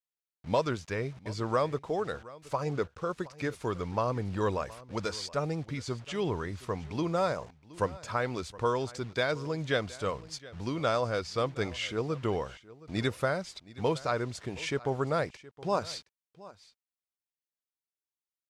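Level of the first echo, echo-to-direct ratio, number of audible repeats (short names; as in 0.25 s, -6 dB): -19.5 dB, -19.5 dB, 1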